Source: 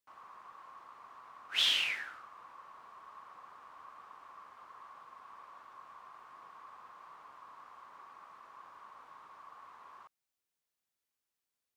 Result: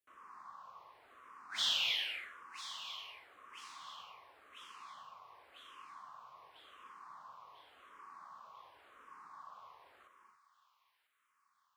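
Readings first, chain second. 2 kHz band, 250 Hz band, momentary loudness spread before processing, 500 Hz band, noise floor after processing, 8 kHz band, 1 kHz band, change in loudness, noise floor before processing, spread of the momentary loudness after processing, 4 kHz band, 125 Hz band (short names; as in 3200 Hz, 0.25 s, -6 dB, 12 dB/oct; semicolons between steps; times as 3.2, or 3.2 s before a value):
-4.0 dB, -3.5 dB, 14 LU, -2.0 dB, -79 dBFS, -0.5 dB, -2.0 dB, -8.5 dB, under -85 dBFS, 24 LU, -2.5 dB, n/a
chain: on a send: thin delay 0.995 s, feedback 51%, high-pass 2000 Hz, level -9.5 dB; on the sum: non-linear reverb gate 0.31 s rising, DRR 7 dB; endless phaser -0.9 Hz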